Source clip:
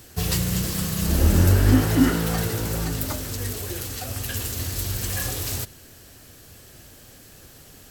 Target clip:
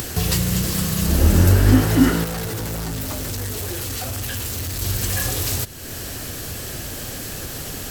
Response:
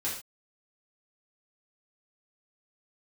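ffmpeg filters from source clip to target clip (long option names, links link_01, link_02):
-filter_complex "[0:a]acompressor=mode=upward:threshold=-20dB:ratio=2.5,asettb=1/sr,asplit=3[link_01][link_02][link_03];[link_01]atrim=end=2.244[link_04];[link_02]atrim=start=2.24:end=4.82,asetpts=PTS-STARTPTS,afade=type=in:duration=0.004:curve=qsin,afade=type=out:start_time=2.576:duration=0.004:curve=qsin,volume=27.5dB,asoftclip=hard,volume=-27.5dB[link_05];[link_03]atrim=start=4.816[link_06];[link_04][link_05]acrossfade=duration=0.004:curve1=hsin:curve2=qsin[link_07];[link_07][link_06]acrossfade=duration=0.004:curve1=qsin:curve2=hsin,volume=3dB"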